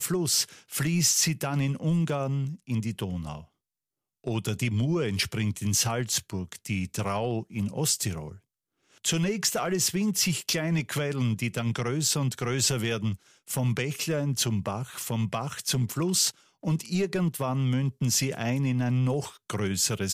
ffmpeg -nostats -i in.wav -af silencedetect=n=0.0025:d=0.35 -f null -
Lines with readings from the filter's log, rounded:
silence_start: 3.46
silence_end: 4.24 | silence_duration: 0.79
silence_start: 8.39
silence_end: 8.92 | silence_duration: 0.54